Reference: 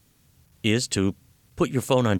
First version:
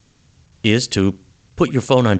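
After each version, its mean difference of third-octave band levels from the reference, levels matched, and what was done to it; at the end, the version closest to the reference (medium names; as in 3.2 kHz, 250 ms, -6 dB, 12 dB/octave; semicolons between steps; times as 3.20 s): 3.0 dB: gate with hold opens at -56 dBFS; tape echo 64 ms, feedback 38%, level -23.5 dB, low-pass 2.6 kHz; trim +7 dB; G.722 64 kbps 16 kHz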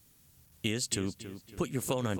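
5.5 dB: treble shelf 6.3 kHz +9 dB; compression, threshold -23 dBFS, peak gain reduction 8 dB; filtered feedback delay 279 ms, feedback 47%, low-pass 3.8 kHz, level -11 dB; trim -5 dB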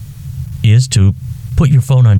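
9.0 dB: resonant low shelf 190 Hz +13 dB, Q 3; compression 16:1, threshold -21 dBFS, peak gain reduction 18 dB; loudness maximiser +20 dB; trim -1 dB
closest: first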